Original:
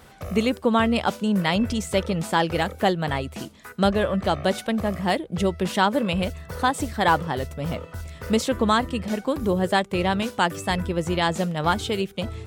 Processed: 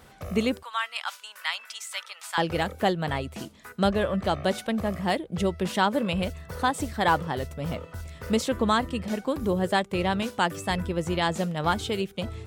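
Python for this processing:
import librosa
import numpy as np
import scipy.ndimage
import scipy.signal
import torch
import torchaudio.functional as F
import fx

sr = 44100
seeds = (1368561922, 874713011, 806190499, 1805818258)

y = fx.highpass(x, sr, hz=1100.0, slope=24, at=(0.63, 2.38))
y = y * librosa.db_to_amplitude(-3.0)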